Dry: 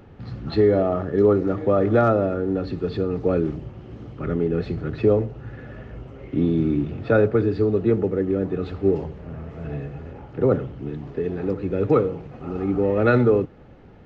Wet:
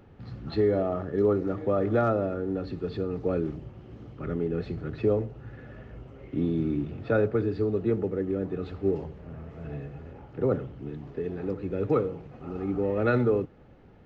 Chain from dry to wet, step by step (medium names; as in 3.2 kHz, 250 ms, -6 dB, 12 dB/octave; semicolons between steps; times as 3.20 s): short-mantissa float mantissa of 8-bit; trim -6.5 dB